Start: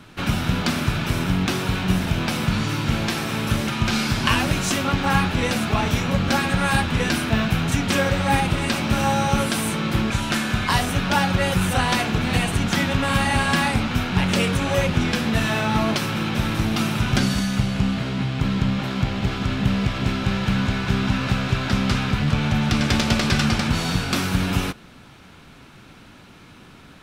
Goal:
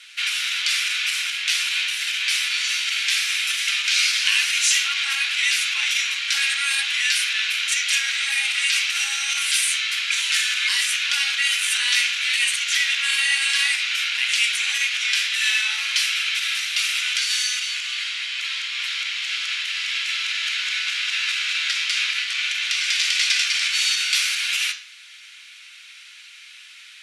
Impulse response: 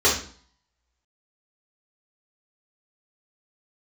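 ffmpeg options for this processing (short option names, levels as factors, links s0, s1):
-filter_complex "[0:a]alimiter=limit=0.2:level=0:latency=1:release=27,asuperpass=centerf=5100:order=8:qfactor=0.55,asplit=2[s0][s1];[1:a]atrim=start_sample=2205[s2];[s1][s2]afir=irnorm=-1:irlink=0,volume=0.0841[s3];[s0][s3]amix=inputs=2:normalize=0,volume=2.51"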